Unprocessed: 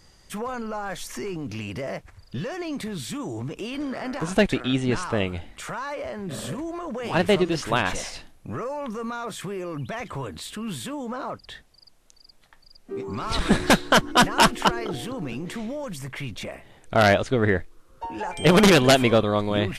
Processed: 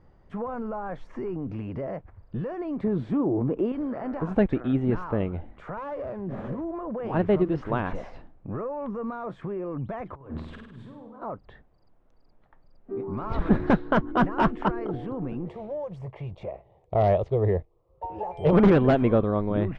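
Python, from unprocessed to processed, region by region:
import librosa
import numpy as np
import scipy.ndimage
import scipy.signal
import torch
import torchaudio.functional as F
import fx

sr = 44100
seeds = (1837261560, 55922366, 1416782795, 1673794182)

y = fx.chain(x, sr, fx.lowpass(hz=9600.0, slope=12),
    fx.peak_eq(hz=440.0, db=10.5, octaves=2.8), at=(2.84, 3.72))
y = fx.chain(y, sr, fx.peak_eq(hz=6400.0, db=7.5, octaves=1.2),
    fx.running_max(window=9), at=(5.77, 6.65))
y = fx.chain(y, sr, fx.over_compress(threshold_db=-39.0, ratio=-0.5),
    fx.peak_eq(hz=1000.0, db=3.0, octaves=0.26),
    fx.room_flutter(wall_m=8.7, rt60_s=0.74), at=(10.15, 11.22))
y = fx.chain(y, sr, fx.highpass(hz=43.0, slope=12),
    fx.fixed_phaser(hz=620.0, stages=4),
    fx.leveller(passes=1), at=(15.47, 18.53))
y = scipy.signal.sosfilt(scipy.signal.butter(2, 1000.0, 'lowpass', fs=sr, output='sos'), y)
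y = fx.dynamic_eq(y, sr, hz=690.0, q=1.2, threshold_db=-31.0, ratio=4.0, max_db=-4)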